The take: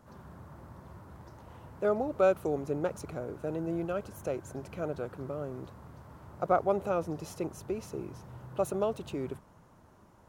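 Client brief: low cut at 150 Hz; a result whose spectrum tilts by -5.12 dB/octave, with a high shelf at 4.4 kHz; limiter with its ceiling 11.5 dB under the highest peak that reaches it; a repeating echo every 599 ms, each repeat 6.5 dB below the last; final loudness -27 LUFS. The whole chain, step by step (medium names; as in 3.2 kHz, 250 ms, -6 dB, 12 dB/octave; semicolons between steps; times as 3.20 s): high-pass 150 Hz; treble shelf 4.4 kHz -6 dB; peak limiter -25 dBFS; feedback delay 599 ms, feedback 47%, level -6.5 dB; trim +10 dB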